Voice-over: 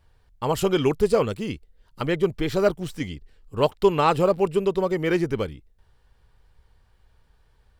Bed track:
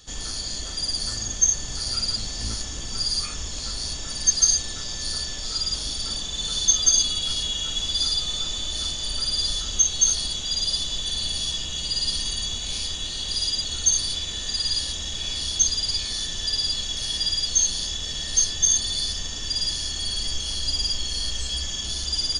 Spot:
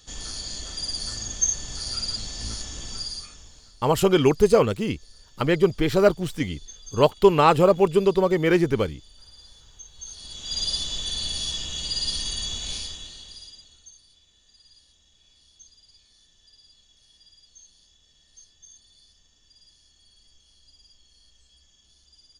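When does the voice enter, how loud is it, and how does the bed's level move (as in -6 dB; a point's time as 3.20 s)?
3.40 s, +3.0 dB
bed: 2.90 s -3.5 dB
3.80 s -25.5 dB
9.91 s -25.5 dB
10.59 s -2 dB
12.71 s -2 dB
13.97 s -31 dB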